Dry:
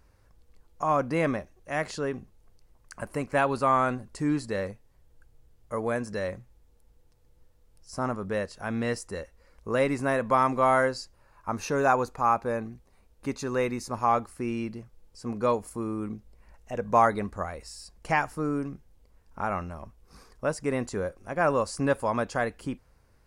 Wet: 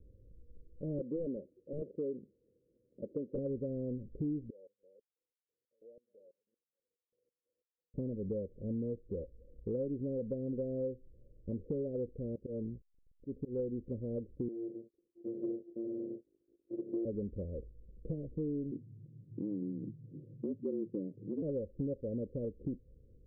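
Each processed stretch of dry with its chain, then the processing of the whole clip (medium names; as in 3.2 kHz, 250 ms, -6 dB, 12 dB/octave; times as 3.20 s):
0.98–3.38 s: high-pass 270 Hz + integer overflow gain 18.5 dB
4.50–7.94 s: chunks repeated in reverse 255 ms, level -12.5 dB + compression 4:1, threshold -46 dBFS + step-sequenced high-pass 6.1 Hz 890–5200 Hz
12.35–13.59 s: hysteresis with a dead band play -46 dBFS + slow attack 203 ms
14.48–17.05 s: sorted samples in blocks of 128 samples + expander -48 dBFS + high-pass 430 Hz
18.71–21.42 s: frequency shift +99 Hz + resonant low-pass 330 Hz, resonance Q 1.6
whole clip: steep low-pass 540 Hz 96 dB/octave; compression 4:1, threshold -38 dBFS; trim +2.5 dB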